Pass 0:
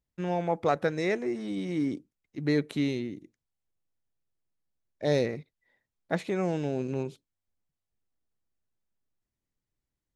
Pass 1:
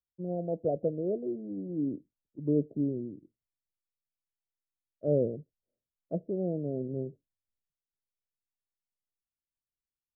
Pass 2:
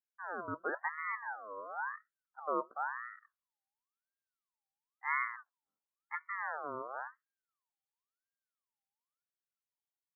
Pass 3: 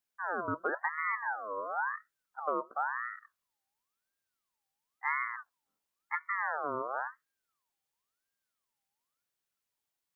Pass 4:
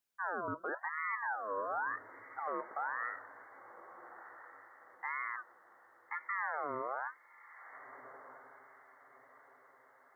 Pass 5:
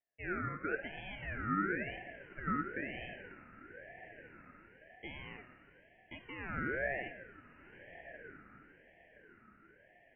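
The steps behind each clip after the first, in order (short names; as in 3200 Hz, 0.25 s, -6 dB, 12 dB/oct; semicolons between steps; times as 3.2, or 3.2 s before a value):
steep low-pass 660 Hz 72 dB/oct; three-band expander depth 40%; gain -2.5 dB
ring modulator with a swept carrier 1200 Hz, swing 35%, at 0.96 Hz; gain -5 dB
compressor, threshold -36 dBFS, peak gain reduction 8 dB; gain +7.5 dB
limiter -28 dBFS, peak gain reduction 9 dB; diffused feedback echo 1.4 s, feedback 40%, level -14.5 dB
ladder band-pass 580 Hz, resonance 75%; FDN reverb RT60 1.9 s, low-frequency decay 1.5×, high-frequency decay 0.8×, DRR 7.5 dB; ring modulator with a swept carrier 1000 Hz, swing 25%, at 1 Hz; gain +11.5 dB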